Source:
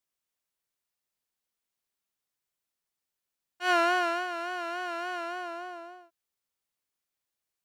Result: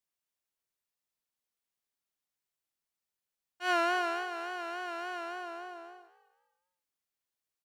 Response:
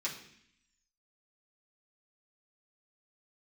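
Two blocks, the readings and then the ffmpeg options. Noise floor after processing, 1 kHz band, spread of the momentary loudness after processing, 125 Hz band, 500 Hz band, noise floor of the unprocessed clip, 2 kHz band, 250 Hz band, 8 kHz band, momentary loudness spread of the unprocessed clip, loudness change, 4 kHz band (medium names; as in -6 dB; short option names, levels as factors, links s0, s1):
under -85 dBFS, -4.0 dB, 16 LU, no reading, -4.0 dB, under -85 dBFS, -4.0 dB, -4.0 dB, -4.0 dB, 16 LU, -4.0 dB, -4.0 dB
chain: -filter_complex "[0:a]asplit=4[s0][s1][s2][s3];[s1]adelay=248,afreqshift=60,volume=0.141[s4];[s2]adelay=496,afreqshift=120,volume=0.0452[s5];[s3]adelay=744,afreqshift=180,volume=0.0145[s6];[s0][s4][s5][s6]amix=inputs=4:normalize=0,volume=0.631"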